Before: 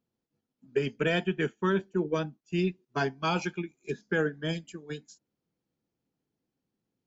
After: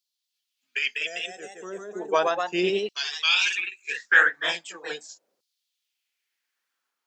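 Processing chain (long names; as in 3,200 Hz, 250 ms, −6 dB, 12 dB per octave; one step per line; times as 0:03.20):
gain on a spectral selection 0:00.99–0:02.02, 760–4,900 Hz −27 dB
auto-filter high-pass saw down 0.37 Hz 490–4,400 Hz
delay with pitch and tempo change per echo 240 ms, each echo +1 semitone, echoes 2
level +8 dB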